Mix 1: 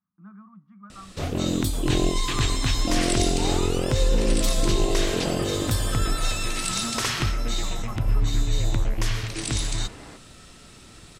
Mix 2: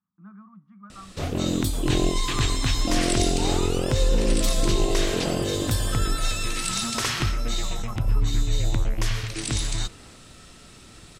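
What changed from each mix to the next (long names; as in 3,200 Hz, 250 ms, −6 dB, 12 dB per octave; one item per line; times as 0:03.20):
second sound −9.5 dB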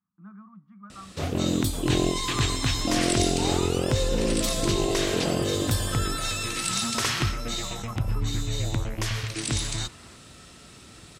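first sound: add high-pass filter 55 Hz 12 dB per octave
second sound: add high-pass with resonance 1,100 Hz, resonance Q 1.6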